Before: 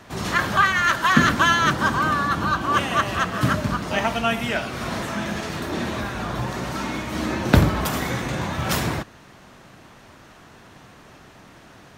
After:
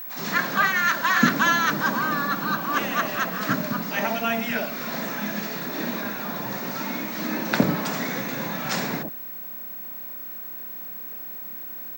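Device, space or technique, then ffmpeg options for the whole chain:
old television with a line whistle: -filter_complex "[0:a]highpass=frequency=180:width=0.5412,highpass=frequency=180:width=1.3066,equalizer=frequency=360:width_type=q:width=4:gain=-6,equalizer=frequency=1200:width_type=q:width=4:gain=-4,equalizer=frequency=3100:width_type=q:width=4:gain=-7,lowpass=frequency=7100:width=0.5412,lowpass=frequency=7100:width=1.3066,acrossover=split=770[link_01][link_02];[link_01]adelay=60[link_03];[link_03][link_02]amix=inputs=2:normalize=0,aeval=exprs='val(0)+0.0224*sin(2*PI*15734*n/s)':channel_layout=same"

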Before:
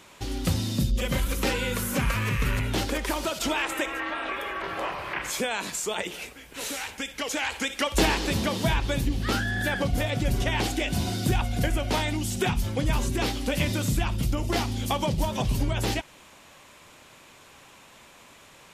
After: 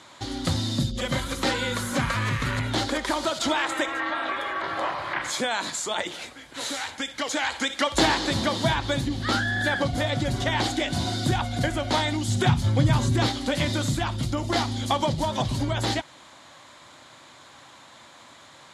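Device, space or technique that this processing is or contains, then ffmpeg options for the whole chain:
car door speaker: -filter_complex "[0:a]asettb=1/sr,asplit=3[link_01][link_02][link_03];[link_01]atrim=end=12.284[link_04];[link_02]atrim=start=12.28:end=13.27,asetpts=PTS-STARTPTS,afade=type=in:duration=0.004:curve=qsin,afade=type=out:start_time=0.986:duration=0.004:curve=qsin,equalizer=frequency=120:width=1:gain=10[link_05];[link_03]atrim=start=13.266[link_06];[link_04][link_05]acrossfade=duration=0.004:curve1=hsin:curve2=qsin[link_07];[link_07][link_06]acrossfade=duration=0.004:curve1=qsin:curve2=hsin,highpass=110,equalizer=frequency=190:width_type=q:width=4:gain=-9,equalizer=frequency=430:width_type=q:width=4:gain=-10,equalizer=frequency=2600:width_type=q:width=4:gain=-10,equalizer=frequency=3900:width_type=q:width=4:gain=4,equalizer=frequency=5700:width_type=q:width=4:gain=-5,equalizer=frequency=8500:width_type=q:width=4:gain=-6,lowpass=frequency=9300:width=0.5412,lowpass=frequency=9300:width=1.3066,volume=4.5dB"

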